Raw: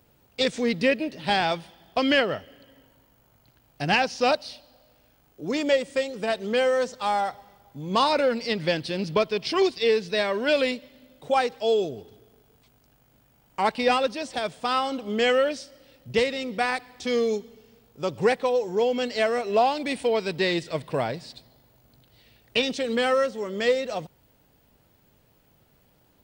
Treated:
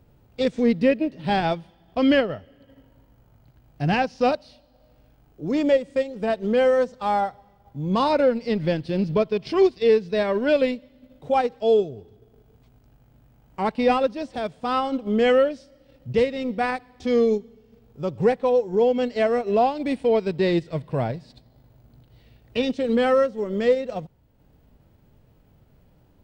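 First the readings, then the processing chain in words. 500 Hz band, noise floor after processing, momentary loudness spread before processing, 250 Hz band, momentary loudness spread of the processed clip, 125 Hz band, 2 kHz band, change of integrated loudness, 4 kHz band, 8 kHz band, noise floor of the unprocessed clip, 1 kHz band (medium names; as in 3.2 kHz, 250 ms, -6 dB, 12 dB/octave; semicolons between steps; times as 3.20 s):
+3.0 dB, -58 dBFS, 9 LU, +5.5 dB, 10 LU, +6.5 dB, -3.5 dB, +2.5 dB, -6.0 dB, no reading, -62 dBFS, +0.5 dB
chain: harmonic-percussive split harmonic +5 dB; transient shaper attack -2 dB, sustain -6 dB; tilt EQ -2.5 dB/octave; trim -3 dB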